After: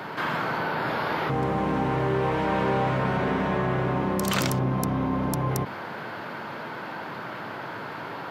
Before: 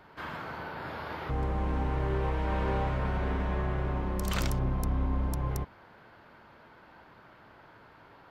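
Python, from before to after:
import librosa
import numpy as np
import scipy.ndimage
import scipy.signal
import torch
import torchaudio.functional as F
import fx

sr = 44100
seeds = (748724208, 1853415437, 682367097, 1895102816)

y = scipy.signal.sosfilt(scipy.signal.butter(4, 120.0, 'highpass', fs=sr, output='sos'), x)
y = fx.env_flatten(y, sr, amount_pct=50)
y = F.gain(torch.from_numpy(y), 7.0).numpy()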